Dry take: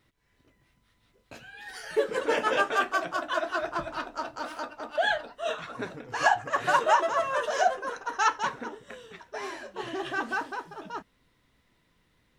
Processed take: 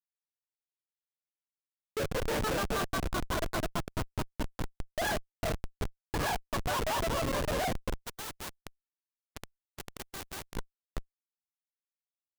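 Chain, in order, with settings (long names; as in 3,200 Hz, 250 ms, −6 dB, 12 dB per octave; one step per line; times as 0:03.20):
low-shelf EQ 74 Hz +7.5 dB
comparator with hysteresis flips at −27 dBFS
0:08.05–0:10.56: every bin compressed towards the loudest bin 2 to 1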